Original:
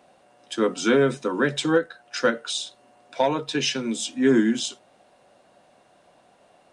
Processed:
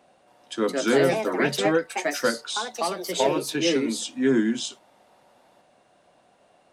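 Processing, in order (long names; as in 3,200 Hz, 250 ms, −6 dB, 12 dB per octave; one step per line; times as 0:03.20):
delay with pitch and tempo change per echo 275 ms, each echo +4 semitones, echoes 2
level −2.5 dB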